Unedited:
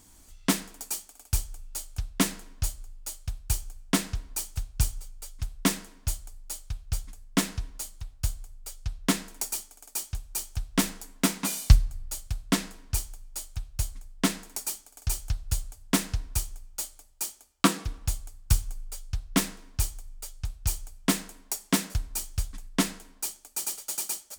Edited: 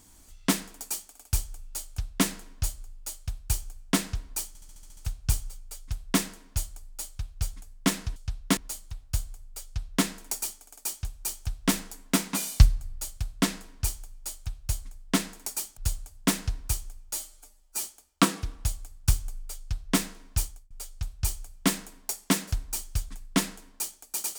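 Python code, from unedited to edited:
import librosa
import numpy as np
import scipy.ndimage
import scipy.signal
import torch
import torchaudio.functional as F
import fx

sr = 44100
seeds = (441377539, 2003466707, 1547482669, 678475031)

y = fx.edit(x, sr, fx.stutter(start_s=4.48, slice_s=0.07, count=8),
    fx.duplicate(start_s=8.74, length_s=0.41, to_s=7.67),
    fx.cut(start_s=14.87, length_s=0.56),
    fx.stretch_span(start_s=16.79, length_s=0.47, factor=1.5),
    fx.fade_out_span(start_s=19.85, length_s=0.28), tone=tone)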